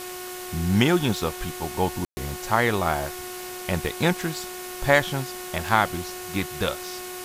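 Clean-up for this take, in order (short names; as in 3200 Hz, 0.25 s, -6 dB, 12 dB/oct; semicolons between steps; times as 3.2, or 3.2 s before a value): de-click; de-hum 364.2 Hz, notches 8; room tone fill 2.05–2.17; noise print and reduce 30 dB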